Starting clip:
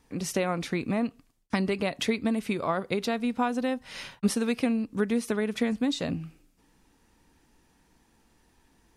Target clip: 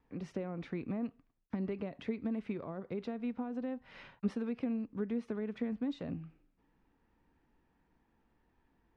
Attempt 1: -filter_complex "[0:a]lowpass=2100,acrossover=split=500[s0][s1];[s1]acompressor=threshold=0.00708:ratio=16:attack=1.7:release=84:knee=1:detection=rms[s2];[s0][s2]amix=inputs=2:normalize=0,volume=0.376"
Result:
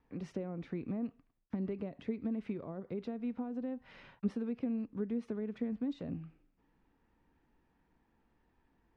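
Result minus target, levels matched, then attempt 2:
compression: peak gain reduction +6 dB
-filter_complex "[0:a]lowpass=2100,acrossover=split=500[s0][s1];[s1]acompressor=threshold=0.015:ratio=16:attack=1.7:release=84:knee=1:detection=rms[s2];[s0][s2]amix=inputs=2:normalize=0,volume=0.376"

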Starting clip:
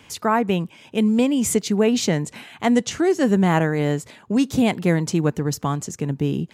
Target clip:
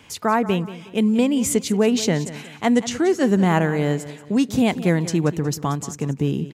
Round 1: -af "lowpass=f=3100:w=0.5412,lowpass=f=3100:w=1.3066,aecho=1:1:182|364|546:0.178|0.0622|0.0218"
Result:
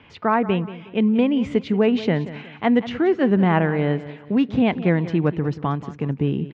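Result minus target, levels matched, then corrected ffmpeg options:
4 kHz band -5.0 dB
-af "aecho=1:1:182|364|546:0.178|0.0622|0.0218"

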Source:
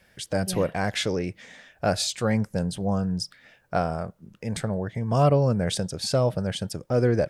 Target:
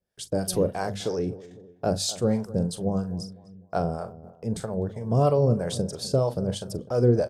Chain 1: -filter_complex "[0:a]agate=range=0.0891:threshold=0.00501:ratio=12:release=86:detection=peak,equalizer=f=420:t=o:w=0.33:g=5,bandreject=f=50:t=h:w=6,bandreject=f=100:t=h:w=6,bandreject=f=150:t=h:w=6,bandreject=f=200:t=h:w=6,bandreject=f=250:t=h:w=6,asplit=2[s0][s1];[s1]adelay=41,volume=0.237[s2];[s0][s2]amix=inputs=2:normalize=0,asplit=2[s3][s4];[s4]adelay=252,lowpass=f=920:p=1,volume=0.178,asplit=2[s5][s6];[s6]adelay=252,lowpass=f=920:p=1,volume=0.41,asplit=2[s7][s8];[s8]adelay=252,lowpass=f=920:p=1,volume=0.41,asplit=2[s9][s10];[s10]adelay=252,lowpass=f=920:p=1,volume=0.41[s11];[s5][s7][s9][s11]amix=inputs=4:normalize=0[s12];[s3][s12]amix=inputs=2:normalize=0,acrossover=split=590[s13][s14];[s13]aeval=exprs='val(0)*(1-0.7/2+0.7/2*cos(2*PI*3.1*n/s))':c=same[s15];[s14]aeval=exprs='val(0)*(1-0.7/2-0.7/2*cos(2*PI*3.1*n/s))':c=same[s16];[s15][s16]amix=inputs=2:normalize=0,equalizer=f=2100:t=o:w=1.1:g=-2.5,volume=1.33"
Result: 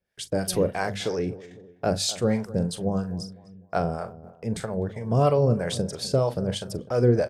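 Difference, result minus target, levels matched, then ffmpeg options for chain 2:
2 kHz band +6.0 dB
-filter_complex "[0:a]agate=range=0.0891:threshold=0.00501:ratio=12:release=86:detection=peak,equalizer=f=420:t=o:w=0.33:g=5,bandreject=f=50:t=h:w=6,bandreject=f=100:t=h:w=6,bandreject=f=150:t=h:w=6,bandreject=f=200:t=h:w=6,bandreject=f=250:t=h:w=6,asplit=2[s0][s1];[s1]adelay=41,volume=0.237[s2];[s0][s2]amix=inputs=2:normalize=0,asplit=2[s3][s4];[s4]adelay=252,lowpass=f=920:p=1,volume=0.178,asplit=2[s5][s6];[s6]adelay=252,lowpass=f=920:p=1,volume=0.41,asplit=2[s7][s8];[s8]adelay=252,lowpass=f=920:p=1,volume=0.41,asplit=2[s9][s10];[s10]adelay=252,lowpass=f=920:p=1,volume=0.41[s11];[s5][s7][s9][s11]amix=inputs=4:normalize=0[s12];[s3][s12]amix=inputs=2:normalize=0,acrossover=split=590[s13][s14];[s13]aeval=exprs='val(0)*(1-0.7/2+0.7/2*cos(2*PI*3.1*n/s))':c=same[s15];[s14]aeval=exprs='val(0)*(1-0.7/2-0.7/2*cos(2*PI*3.1*n/s))':c=same[s16];[s15][s16]amix=inputs=2:normalize=0,equalizer=f=2100:t=o:w=1.1:g=-12.5,volume=1.33"

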